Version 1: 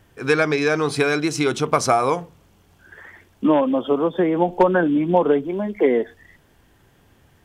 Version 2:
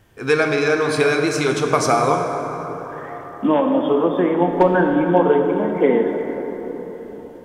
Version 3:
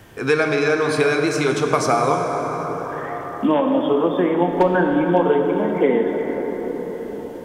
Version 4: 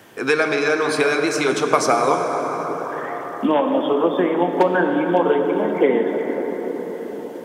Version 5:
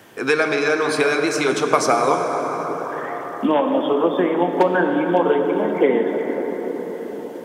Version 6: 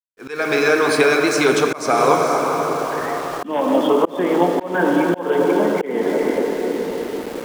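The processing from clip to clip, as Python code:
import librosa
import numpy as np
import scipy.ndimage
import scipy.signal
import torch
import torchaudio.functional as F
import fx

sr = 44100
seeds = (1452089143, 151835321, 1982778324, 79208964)

y1 = fx.rev_plate(x, sr, seeds[0], rt60_s=4.7, hf_ratio=0.4, predelay_ms=0, drr_db=2.5)
y2 = fx.band_squash(y1, sr, depth_pct=40)
y2 = y2 * librosa.db_to_amplitude(-1.0)
y3 = scipy.signal.sosfilt(scipy.signal.butter(2, 210.0, 'highpass', fs=sr, output='sos'), y2)
y3 = fx.hpss(y3, sr, part='percussive', gain_db=5)
y3 = y3 * librosa.db_to_amplitude(-1.5)
y4 = y3
y5 = fx.echo_diffused(y4, sr, ms=465, feedback_pct=42, wet_db=-11)
y5 = np.where(np.abs(y5) >= 10.0 ** (-33.0 / 20.0), y5, 0.0)
y5 = fx.auto_swell(y5, sr, attack_ms=280.0)
y5 = y5 * librosa.db_to_amplitude(3.0)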